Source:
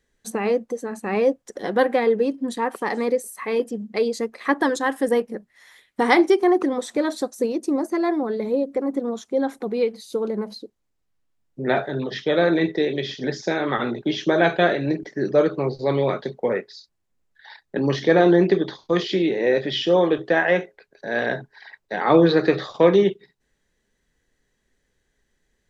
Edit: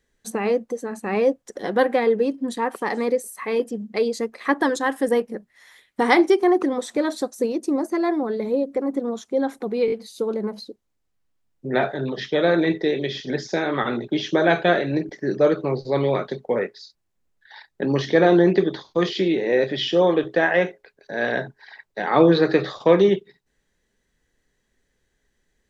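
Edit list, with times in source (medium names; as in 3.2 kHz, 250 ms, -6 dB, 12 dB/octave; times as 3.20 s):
9.86 s: stutter 0.02 s, 4 plays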